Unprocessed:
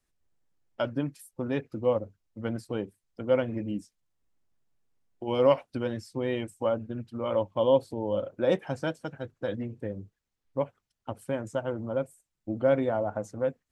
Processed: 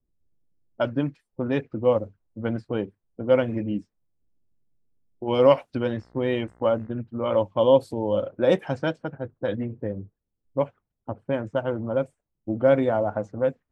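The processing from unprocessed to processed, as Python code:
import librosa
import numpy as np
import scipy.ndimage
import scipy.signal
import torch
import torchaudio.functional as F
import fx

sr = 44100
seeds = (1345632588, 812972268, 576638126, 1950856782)

y = fx.dmg_buzz(x, sr, base_hz=60.0, harmonics=35, level_db=-62.0, tilt_db=-3, odd_only=False, at=(5.93, 6.91), fade=0.02)
y = fx.env_lowpass(y, sr, base_hz=370.0, full_db=-23.5)
y = y * librosa.db_to_amplitude(5.0)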